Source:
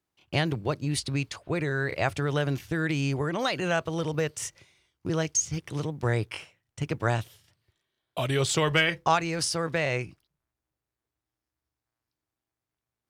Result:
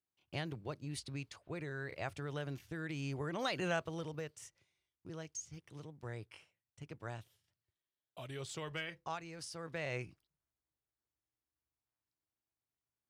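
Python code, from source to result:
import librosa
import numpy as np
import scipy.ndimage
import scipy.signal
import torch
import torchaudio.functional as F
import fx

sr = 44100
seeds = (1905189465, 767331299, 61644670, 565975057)

y = fx.gain(x, sr, db=fx.line((2.88, -14.5), (3.63, -7.5), (4.46, -19.0), (9.47, -19.0), (10.03, -10.0)))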